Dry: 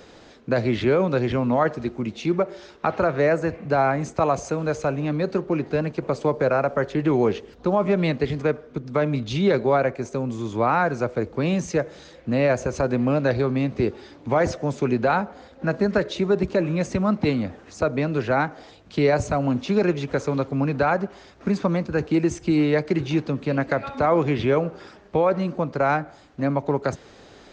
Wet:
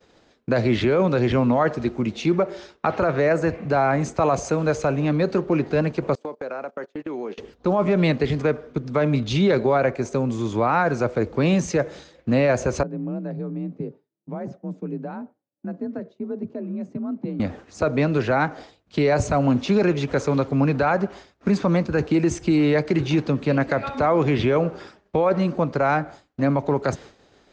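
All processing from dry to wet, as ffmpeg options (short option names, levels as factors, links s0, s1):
-filter_complex "[0:a]asettb=1/sr,asplit=3[s0][s1][s2];[s0]atrim=end=6.154[s3];[s1]atrim=start=6.15:end=7.38,asetpts=PTS-STARTPTS,afade=t=in:d=0.004:c=qsin,afade=t=out:st=1.226:d=0.004:c=qsin,highpass=f=210:w=0.5412,highpass=f=210:w=1.3066,agate=range=0.0562:threshold=0.0447:ratio=16:release=100:detection=peak,acompressor=threshold=0.0251:ratio=5:attack=3.2:release=140:knee=1:detection=peak[s4];[s2]atrim=start=7.376[s5];[s3][s4]acrossfade=d=0.004:c1=hsin:c2=qsin[s6];[s6][s5]acrossfade=d=0.004:c1=qsin:c2=hsin,asettb=1/sr,asplit=3[s7][s8][s9];[s7]atrim=end=12.834[s10];[s8]atrim=start=12.83:end=17.4,asetpts=PTS-STARTPTS,afade=t=in:d=0.004:c=qsin,afade=t=out:st=4.566:d=0.004:c=qsin,afreqshift=40,bandpass=f=170:t=q:w=2,aemphasis=mode=production:type=bsi[s11];[s9]atrim=start=17.396[s12];[s10][s11]acrossfade=d=0.004:c1=hsin:c2=qsin[s13];[s13][s12]acrossfade=d=0.004:c1=qsin:c2=hsin,agate=range=0.0224:threshold=0.0126:ratio=3:detection=peak,alimiter=limit=0.188:level=0:latency=1:release=12,volume=1.5"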